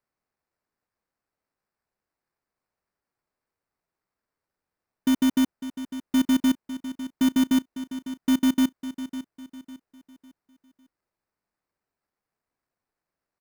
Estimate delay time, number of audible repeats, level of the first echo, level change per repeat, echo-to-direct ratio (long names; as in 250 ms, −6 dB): 552 ms, 3, −13.0 dB, −8.5 dB, −12.5 dB